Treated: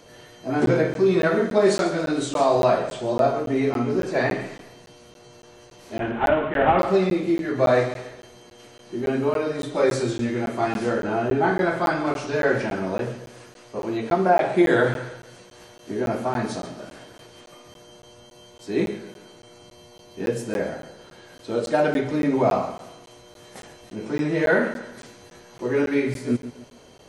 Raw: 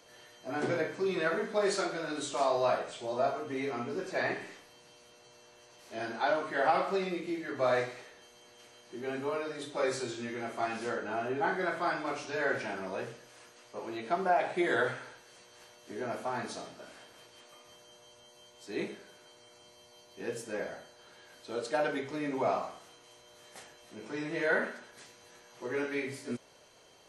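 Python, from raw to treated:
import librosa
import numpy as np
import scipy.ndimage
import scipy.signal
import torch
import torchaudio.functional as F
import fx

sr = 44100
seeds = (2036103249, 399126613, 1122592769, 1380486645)

y = fx.cvsd(x, sr, bps=16000, at=(5.97, 6.79))
y = fx.low_shelf(y, sr, hz=430.0, db=12.0)
y = fx.echo_feedback(y, sr, ms=139, feedback_pct=38, wet_db=-13.5)
y = fx.buffer_crackle(y, sr, first_s=0.66, period_s=0.28, block=512, kind='zero')
y = F.gain(torch.from_numpy(y), 6.0).numpy()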